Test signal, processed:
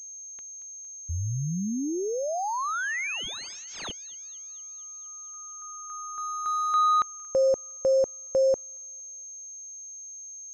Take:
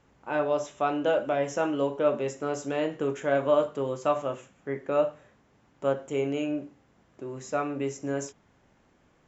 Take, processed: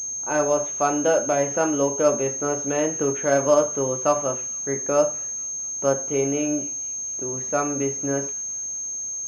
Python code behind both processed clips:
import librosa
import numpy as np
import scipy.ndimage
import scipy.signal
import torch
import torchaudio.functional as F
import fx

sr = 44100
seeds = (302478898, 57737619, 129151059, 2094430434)

y = fx.echo_wet_highpass(x, sr, ms=230, feedback_pct=58, hz=2500.0, wet_db=-16.5)
y = fx.pwm(y, sr, carrier_hz=6400.0)
y = y * librosa.db_to_amplitude(5.0)